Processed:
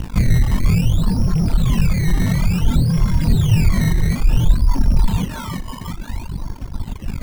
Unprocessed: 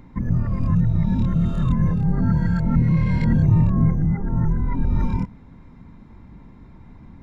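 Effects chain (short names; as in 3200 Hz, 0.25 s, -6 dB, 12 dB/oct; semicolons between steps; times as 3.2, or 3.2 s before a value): rattling part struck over -21 dBFS, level -30 dBFS; resonant low shelf 620 Hz -6.5 dB, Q 1.5; on a send: thinning echo 0.35 s, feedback 59%, high-pass 280 Hz, level -6 dB; on the sum: AM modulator 50 Hz, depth 35%; notch 810 Hz, Q 12; in parallel at -11.5 dB: fuzz box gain 49 dB, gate -54 dBFS; on the sum: tilt -3.5 dB/oct; decimation with a swept rate 15×, swing 100% 0.57 Hz; reverb removal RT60 2 s; gain -2 dB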